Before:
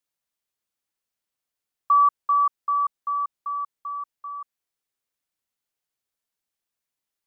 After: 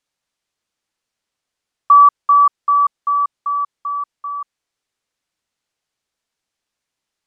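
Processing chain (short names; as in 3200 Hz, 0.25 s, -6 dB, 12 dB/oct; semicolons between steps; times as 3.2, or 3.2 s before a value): LPF 7500 Hz; gain +9 dB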